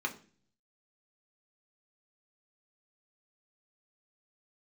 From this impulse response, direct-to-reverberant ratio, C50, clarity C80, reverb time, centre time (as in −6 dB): 2.0 dB, 14.5 dB, 19.0 dB, 0.40 s, 9 ms